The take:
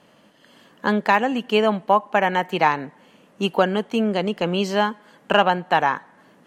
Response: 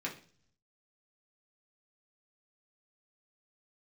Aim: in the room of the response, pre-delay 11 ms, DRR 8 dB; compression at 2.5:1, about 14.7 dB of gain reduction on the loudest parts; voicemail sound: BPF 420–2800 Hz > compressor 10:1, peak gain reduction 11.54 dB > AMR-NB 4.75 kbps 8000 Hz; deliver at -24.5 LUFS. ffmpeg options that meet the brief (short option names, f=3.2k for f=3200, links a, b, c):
-filter_complex "[0:a]acompressor=threshold=-35dB:ratio=2.5,asplit=2[a][b];[1:a]atrim=start_sample=2205,adelay=11[c];[b][c]afir=irnorm=-1:irlink=0,volume=-10.5dB[d];[a][d]amix=inputs=2:normalize=0,highpass=420,lowpass=2.8k,acompressor=threshold=-37dB:ratio=10,volume=20.5dB" -ar 8000 -c:a libopencore_amrnb -b:a 4750